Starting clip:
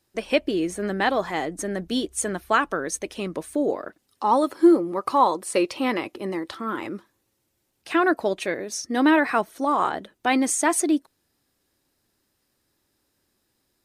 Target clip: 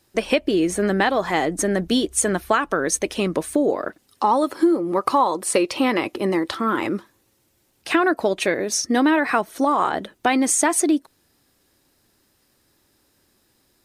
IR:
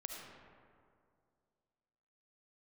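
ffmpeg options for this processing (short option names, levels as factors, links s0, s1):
-af "acompressor=threshold=0.0631:ratio=5,volume=2.66"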